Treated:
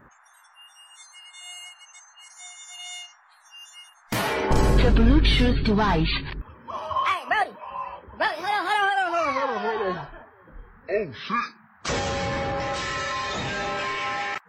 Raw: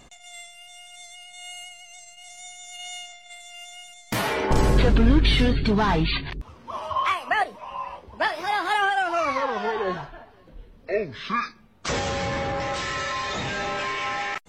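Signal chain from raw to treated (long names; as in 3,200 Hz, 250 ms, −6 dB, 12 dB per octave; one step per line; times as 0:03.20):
noise reduction from a noise print of the clip's start 30 dB
noise in a band 770–1,800 Hz −57 dBFS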